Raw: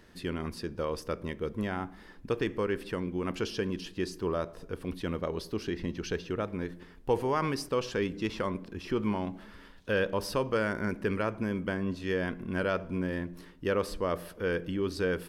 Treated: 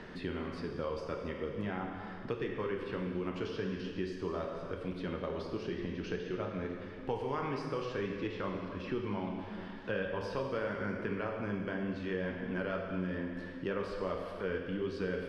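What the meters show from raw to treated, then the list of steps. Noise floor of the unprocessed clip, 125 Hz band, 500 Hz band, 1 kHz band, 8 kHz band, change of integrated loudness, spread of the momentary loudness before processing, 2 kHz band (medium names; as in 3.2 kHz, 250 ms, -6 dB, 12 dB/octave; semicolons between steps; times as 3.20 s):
-52 dBFS, -4.5 dB, -4.5 dB, -5.0 dB, under -15 dB, -5.0 dB, 8 LU, -5.0 dB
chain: low-pass 3.9 kHz 12 dB/octave; flange 1.6 Hz, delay 3.8 ms, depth 7.4 ms, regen -58%; plate-style reverb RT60 1.5 s, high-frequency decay 0.9×, DRR 1 dB; three bands compressed up and down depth 70%; trim -3.5 dB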